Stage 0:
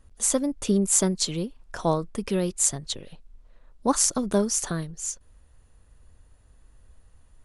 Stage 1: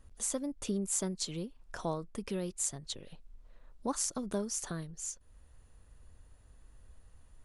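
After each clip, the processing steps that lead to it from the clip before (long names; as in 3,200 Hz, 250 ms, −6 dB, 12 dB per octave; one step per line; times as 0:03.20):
downward compressor 1.5 to 1, threshold −45 dBFS, peak gain reduction 10.5 dB
level −2.5 dB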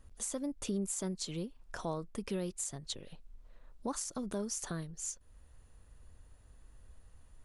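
brickwall limiter −26.5 dBFS, peak gain reduction 11.5 dB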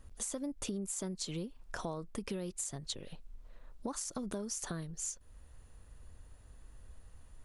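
downward compressor, threshold −38 dBFS, peak gain reduction 7 dB
level +3 dB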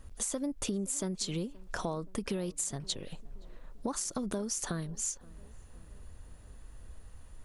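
tape delay 523 ms, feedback 69%, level −20.5 dB, low-pass 1,100 Hz
level +4.5 dB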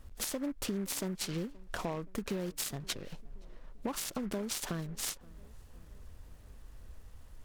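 short delay modulated by noise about 1,300 Hz, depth 0.045 ms
level −1.5 dB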